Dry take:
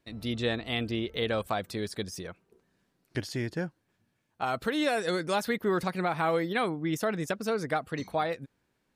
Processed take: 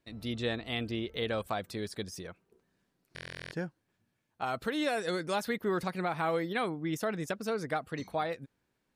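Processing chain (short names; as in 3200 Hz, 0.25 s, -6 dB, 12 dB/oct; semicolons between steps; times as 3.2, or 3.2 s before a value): stuck buffer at 3.14, samples 1024, times 15; gain -3.5 dB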